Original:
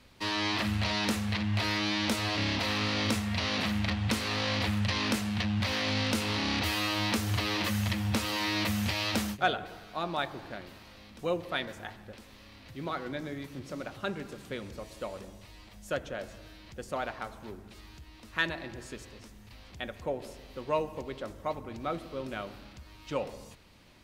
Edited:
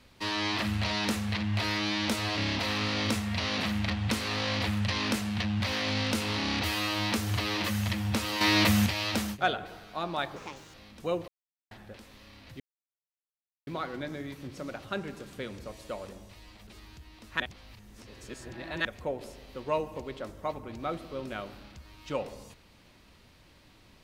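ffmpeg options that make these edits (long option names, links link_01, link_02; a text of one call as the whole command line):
ffmpeg -i in.wav -filter_complex "[0:a]asplit=11[link_01][link_02][link_03][link_04][link_05][link_06][link_07][link_08][link_09][link_10][link_11];[link_01]atrim=end=8.412[link_12];[link_02]atrim=start=8.408:end=8.862,asetpts=PTS-STARTPTS,volume=7dB[link_13];[link_03]atrim=start=8.858:end=10.364[link_14];[link_04]atrim=start=10.36:end=10.93,asetpts=PTS-STARTPTS,asetrate=66150,aresample=44100[link_15];[link_05]atrim=start=10.926:end=11.47,asetpts=PTS-STARTPTS,afade=type=out:start_time=0.54:duration=0.004:curve=hsin[link_16];[link_06]atrim=start=11.47:end=11.9,asetpts=PTS-STARTPTS,volume=0[link_17];[link_07]atrim=start=11.9:end=12.79,asetpts=PTS-STARTPTS,afade=type=in:duration=0.004:curve=hsin,afade=type=out:start_time=0.886:duration=0.004:curve=hsin,apad=pad_dur=1.07[link_18];[link_08]atrim=start=12.79:end=15.792,asetpts=PTS-STARTPTS,afade=type=in:duration=0.004:curve=hsin[link_19];[link_09]atrim=start=17.678:end=18.412[link_20];[link_10]atrim=start=18.408:end=19.862,asetpts=PTS-STARTPTS,areverse[link_21];[link_11]atrim=start=19.858[link_22];[link_12][link_13]acrossfade=duration=0.004:curve1=hsin:curve2=hsin[link_23];[link_23][link_14]acrossfade=duration=0.004:curve1=hsin:curve2=hsin[link_24];[link_24][link_15]acrossfade=duration=0.004:curve1=hsin:curve2=hsin[link_25];[link_16][link_17][link_18][link_19]concat=n=4:v=0:a=1[link_26];[link_25][link_26]acrossfade=duration=0.004:curve1=hsin:curve2=hsin[link_27];[link_27][link_20]acrossfade=duration=0.004:curve1=hsin:curve2=hsin[link_28];[link_28][link_21]acrossfade=duration=0.004:curve1=hsin:curve2=hsin[link_29];[link_29][link_22]acrossfade=duration=0.004:curve1=hsin:curve2=hsin" out.wav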